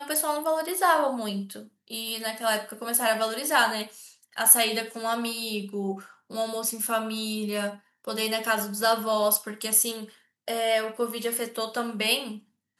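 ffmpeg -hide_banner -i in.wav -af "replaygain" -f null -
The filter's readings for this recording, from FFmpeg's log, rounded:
track_gain = +7.2 dB
track_peak = 0.532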